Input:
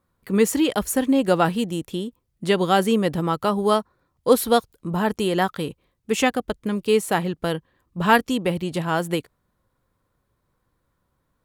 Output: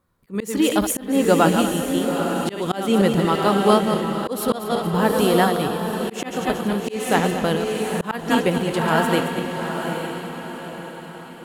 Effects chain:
feedback delay that plays each chunk backwards 116 ms, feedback 49%, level −7 dB
feedback delay with all-pass diffusion 870 ms, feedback 44%, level −6 dB
volume swells 263 ms
level +2 dB

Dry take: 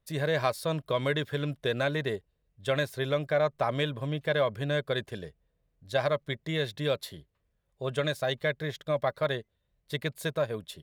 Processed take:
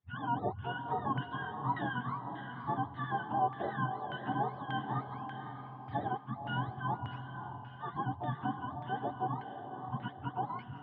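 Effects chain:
frequency axis turned over on the octave scale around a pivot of 680 Hz
feedback delay with all-pass diffusion 543 ms, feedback 47%, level −7 dB
auto-filter low-pass saw down 1.7 Hz 950–2,000 Hz
level −8 dB

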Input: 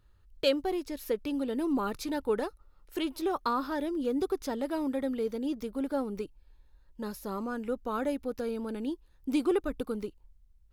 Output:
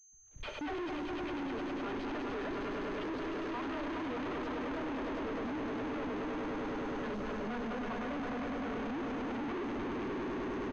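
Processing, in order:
spectral magnitudes quantised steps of 15 dB
comb filter 2.9 ms, depth 42%
leveller curve on the samples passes 5
all-pass dispersion lows, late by 88 ms, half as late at 530 Hz
gate pattern ".xxx.xxxx.xxx." 123 BPM
echo that builds up and dies away 102 ms, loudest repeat 5, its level −7 dB
convolution reverb, pre-delay 4 ms, DRR 16 dB
soft clipping −34.5 dBFS, distortion −3 dB
switching amplifier with a slow clock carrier 6,300 Hz
level −2 dB

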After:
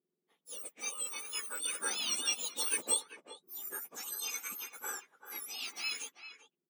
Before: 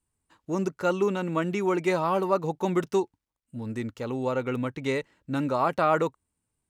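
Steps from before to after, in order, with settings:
frequency axis turned over on the octave scale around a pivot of 1,800 Hz
source passing by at 0:03.02, 6 m/s, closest 5.2 metres
far-end echo of a speakerphone 390 ms, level −10 dB

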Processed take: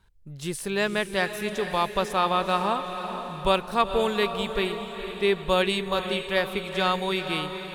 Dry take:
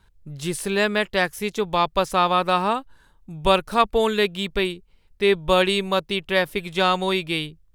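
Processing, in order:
feedback delay with all-pass diffusion 465 ms, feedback 54%, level −8.5 dB
level −4.5 dB

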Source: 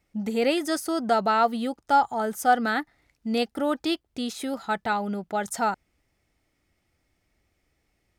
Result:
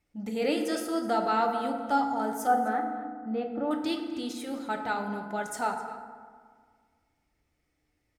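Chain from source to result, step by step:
0:02.47–0:03.71: low-pass filter 1,300 Hz 12 dB per octave
slap from a distant wall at 44 metres, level −14 dB
feedback delay network reverb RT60 1.8 s, low-frequency decay 1.1×, high-frequency decay 0.45×, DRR 3.5 dB
flanger 0.69 Hz, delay 0.7 ms, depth 8 ms, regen −72%
level −2 dB

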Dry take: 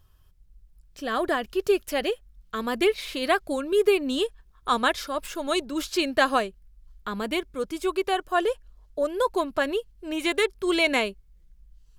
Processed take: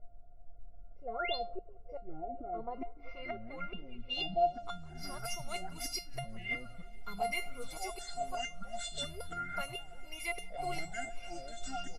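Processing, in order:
EQ curve with evenly spaced ripples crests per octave 0.84, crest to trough 15 dB
on a send: echo with shifted repeats 96 ms, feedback 62%, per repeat +43 Hz, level −19.5 dB
on the sum: gate with flip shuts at −13 dBFS, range −29 dB
background noise brown −47 dBFS
low-pass filter sweep 550 Hz → 10,000 Hz, 0:02.39–0:05.09
tape delay 179 ms, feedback 58%, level −21.5 dB, low-pass 1,800 Hz
delay with pitch and tempo change per echo 581 ms, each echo −6 semitones, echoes 3
sound drawn into the spectrogram rise, 0:01.13–0:01.36, 860–4,900 Hz −30 dBFS
tuned comb filter 700 Hz, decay 0.22 s, harmonics all, mix 100%
level +8.5 dB

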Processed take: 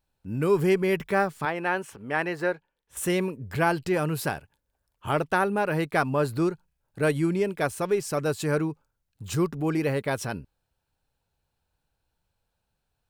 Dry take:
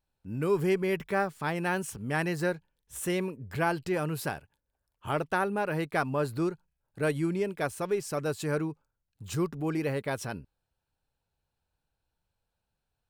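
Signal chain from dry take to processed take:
0:01.45–0:02.97: bass and treble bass −13 dB, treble −13 dB
level +4.5 dB

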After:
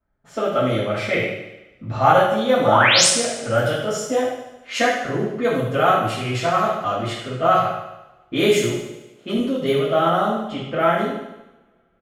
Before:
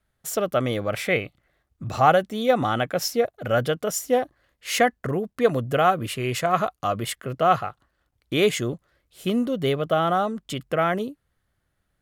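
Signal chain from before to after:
low-pass that shuts in the quiet parts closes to 1,300 Hz, open at −18.5 dBFS
0:02.63–0:03.07: sound drawn into the spectrogram rise 440–10,000 Hz −18 dBFS
0:08.71–0:09.38: high-pass filter 180 Hz
on a send: repeating echo 73 ms, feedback 60%, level −11 dB
on the sum: coupled-rooms reverb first 0.64 s, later 2.3 s, from −27 dB, DRR −8.5 dB
level −6 dB

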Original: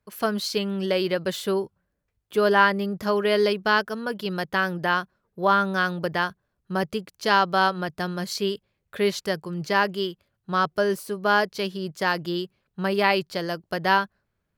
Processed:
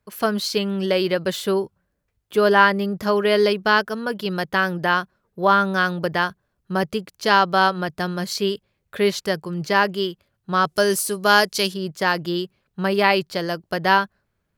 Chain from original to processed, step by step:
0:10.65–0:11.74: parametric band 8,900 Hz +14.5 dB 2.1 octaves
level +3.5 dB

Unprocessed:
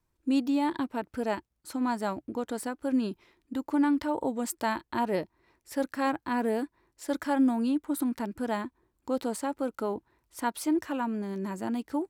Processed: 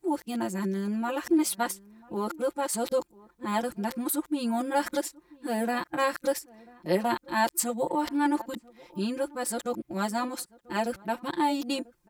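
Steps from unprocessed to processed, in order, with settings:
played backwards from end to start
high-shelf EQ 3,500 Hz +7 dB
comb filter 5.7 ms, depth 86%
slap from a distant wall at 170 metres, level −23 dB

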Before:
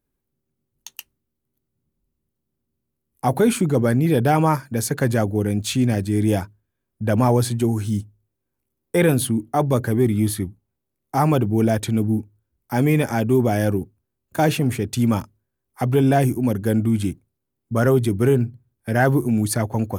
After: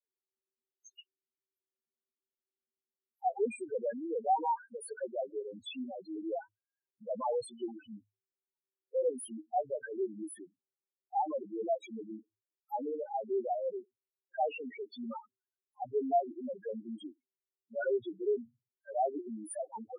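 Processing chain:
high-pass filter 580 Hz 12 dB per octave
spectral peaks only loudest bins 2
level −4 dB

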